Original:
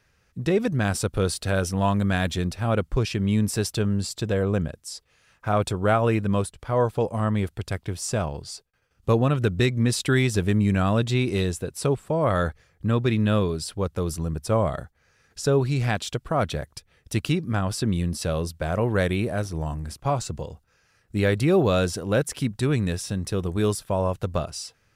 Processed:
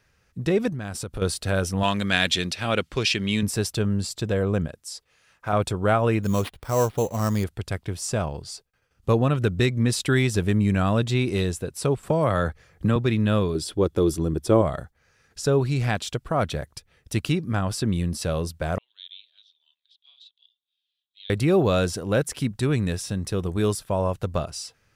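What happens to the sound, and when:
0.69–1.22 compressor 4:1, threshold -29 dBFS
1.83–3.43 weighting filter D
4.66–5.53 low shelf 220 Hz -6.5 dB
6.23–7.44 sample-rate reducer 6800 Hz
12.03–12.96 three-band squash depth 70%
13.55–14.62 small resonant body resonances 340/3400 Hz, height 13 dB, ringing for 25 ms
18.78–21.3 Butterworth band-pass 3500 Hz, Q 5.6

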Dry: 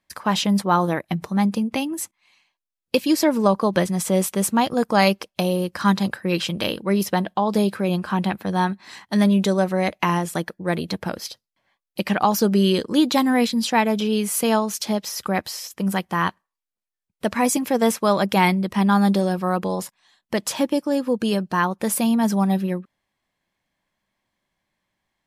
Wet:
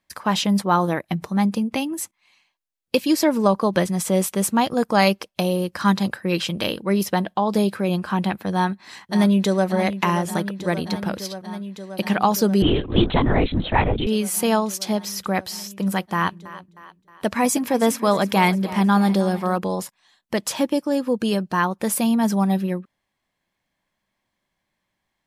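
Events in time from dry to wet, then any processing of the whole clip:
8.51–9.67 echo throw 0.58 s, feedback 85%, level -11.5 dB
12.62–14.07 LPC vocoder at 8 kHz whisper
16.14–19.58 split-band echo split 300 Hz, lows 0.18 s, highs 0.312 s, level -16 dB

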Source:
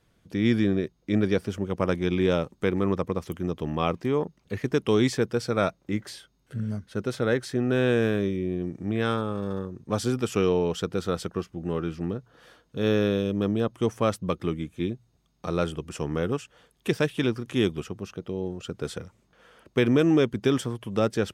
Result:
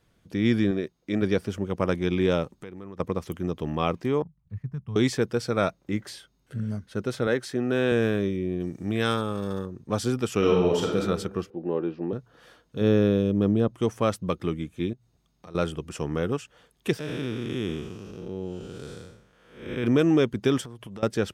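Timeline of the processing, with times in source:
0.71–1.22 low shelf 140 Hz -10.5 dB
2.49–3 compressor 3:1, threshold -42 dBFS
4.22–4.96 EQ curve 150 Hz 0 dB, 320 Hz -27 dB, 510 Hz -26 dB, 1000 Hz -17 dB, 3200 Hz -29 dB
7.27–7.92 Bessel high-pass 160 Hz
8.6–9.66 high shelf 3400 Hz +10.5 dB
10.38–11 reverb throw, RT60 0.9 s, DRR -1.5 dB
11.5–12.13 speaker cabinet 220–3700 Hz, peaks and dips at 350 Hz +5 dB, 530 Hz +5 dB, 900 Hz +5 dB, 1300 Hz -10 dB, 2100 Hz -8 dB, 3200 Hz -8 dB
12.81–13.76 tilt shelf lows +4.5 dB, about 680 Hz
14.93–15.55 compressor 2:1, threshold -53 dBFS
16.99–19.84 time blur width 0.272 s
20.61–21.03 compressor 12:1, threshold -36 dBFS

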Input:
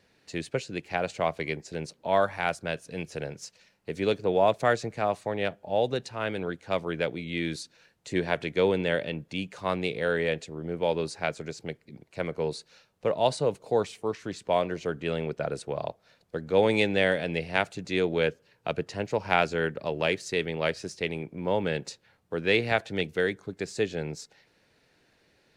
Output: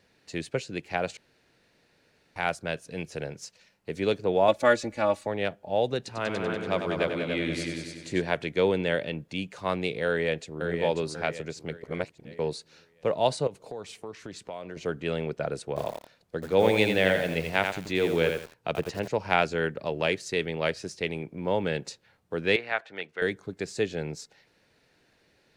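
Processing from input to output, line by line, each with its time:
1.17–2.36 room tone
4.48–5.27 comb 3.5 ms, depth 92%
5.98–8.22 multi-head echo 96 ms, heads all three, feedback 43%, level -8 dB
10.06–10.68 echo throw 0.54 s, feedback 40%, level -5.5 dB
11.83–12.39 reverse
13.47–14.77 compressor 5:1, threshold -35 dBFS
15.64–19.08 lo-fi delay 84 ms, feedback 35%, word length 7-bit, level -5 dB
22.56–23.22 band-pass 1400 Hz, Q 1

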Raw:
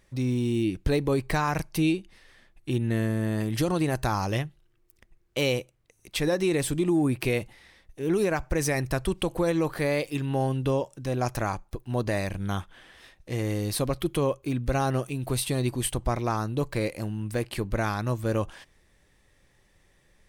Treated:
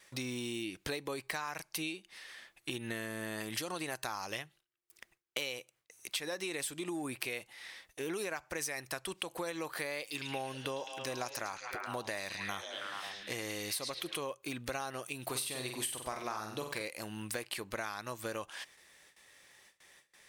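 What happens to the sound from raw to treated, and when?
10–14.21 delay with a stepping band-pass 0.107 s, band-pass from 4800 Hz, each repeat -0.7 oct, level -1 dB
15.23–16.82 flutter echo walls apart 8 m, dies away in 0.46 s
whole clip: HPF 1500 Hz 6 dB/oct; gate with hold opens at -59 dBFS; compressor 6:1, threshold -45 dBFS; gain +9 dB

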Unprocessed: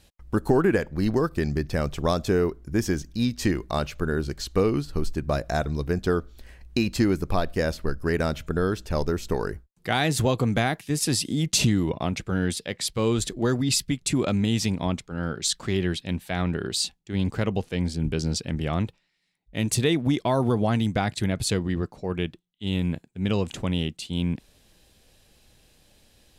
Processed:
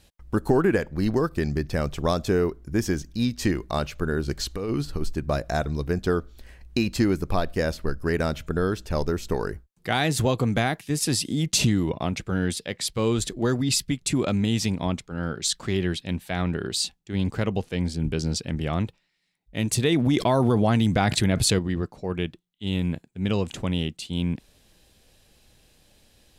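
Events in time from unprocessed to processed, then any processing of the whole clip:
4.28–5.02 negative-ratio compressor -26 dBFS
19.92–21.59 fast leveller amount 70%

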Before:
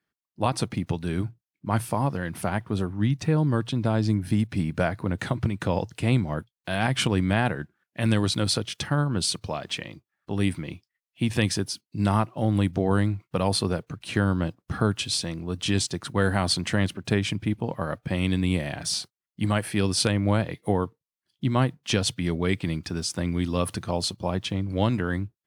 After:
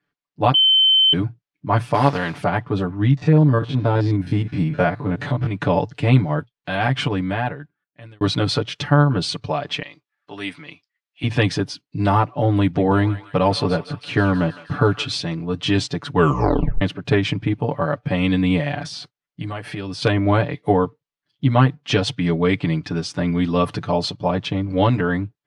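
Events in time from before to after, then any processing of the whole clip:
0.54–1.13 bleep 3080 Hz -16.5 dBFS
1.93–2.37 spectral contrast lowered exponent 0.6
3.17–5.51 stepped spectrum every 50 ms
6.39–8.21 fade out
9.82–11.24 HPF 1200 Hz 6 dB/oct
12.59–15.12 thinning echo 0.16 s, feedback 72%, high-pass 1200 Hz, level -12 dB
16.12 tape stop 0.69 s
18.8–20.02 compressor 4:1, threshold -30 dBFS
whole clip: LPF 4000 Hz 12 dB/oct; comb 6.9 ms, depth 98%; dynamic EQ 730 Hz, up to +3 dB, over -35 dBFS, Q 0.73; gain +3 dB

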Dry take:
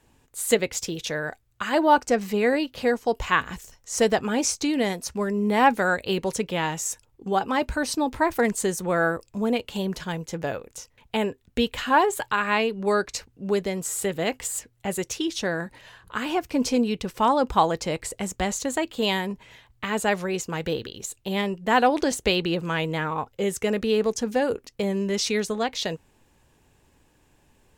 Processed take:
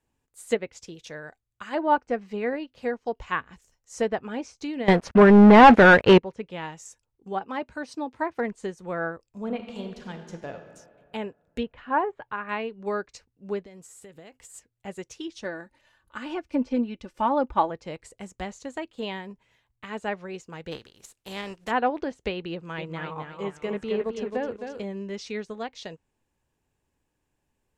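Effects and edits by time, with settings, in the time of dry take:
4.88–6.18 sample leveller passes 5
7.43–8.39 HPF 110 Hz
9.3–10.59 reverb throw, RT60 2.5 s, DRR 4 dB
11.63–12.49 LPF 2000 Hz
13.61–14.54 compressor 16:1, threshold -29 dBFS
15.44–17.7 comb 3.4 ms, depth 56%
20.71–21.7 spectral contrast lowered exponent 0.58
22.52–24.83 warbling echo 0.264 s, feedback 45%, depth 64 cents, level -5 dB
whole clip: treble ducked by the level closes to 2500 Hz, closed at -18 dBFS; bell 3700 Hz -2 dB; upward expander 1.5:1, over -40 dBFS

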